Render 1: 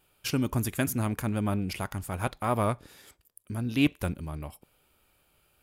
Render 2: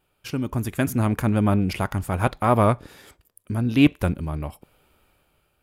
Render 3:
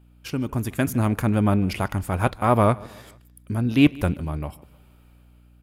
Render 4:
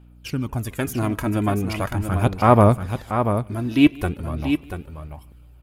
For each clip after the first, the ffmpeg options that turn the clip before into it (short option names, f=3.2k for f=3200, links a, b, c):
-af "highshelf=f=3.1k:g=-8,dynaudnorm=f=230:g=7:m=9.5dB"
-af "aeval=exprs='val(0)+0.00251*(sin(2*PI*60*n/s)+sin(2*PI*2*60*n/s)/2+sin(2*PI*3*60*n/s)/3+sin(2*PI*4*60*n/s)/4+sin(2*PI*5*60*n/s)/5)':c=same,aecho=1:1:151|302|453:0.0708|0.0326|0.015"
-af "aphaser=in_gain=1:out_gain=1:delay=3.1:decay=0.51:speed=0.4:type=sinusoidal,aecho=1:1:686:0.422,volume=-1dB"